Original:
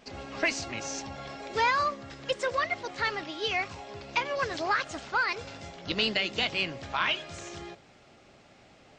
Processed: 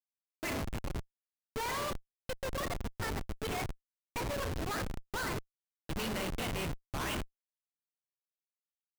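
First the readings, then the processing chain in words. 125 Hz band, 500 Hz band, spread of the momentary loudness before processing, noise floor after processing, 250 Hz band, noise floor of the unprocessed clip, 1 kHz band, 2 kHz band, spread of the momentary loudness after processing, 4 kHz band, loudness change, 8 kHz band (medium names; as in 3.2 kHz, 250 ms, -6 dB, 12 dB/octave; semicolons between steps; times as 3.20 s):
+4.0 dB, -6.5 dB, 14 LU, under -85 dBFS, -1.5 dB, -57 dBFS, -9.5 dB, -11.5 dB, 8 LU, -11.5 dB, -8.0 dB, -3.0 dB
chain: gated-style reverb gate 260 ms falling, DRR 3.5 dB; Schmitt trigger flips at -26.5 dBFS; trim -4.5 dB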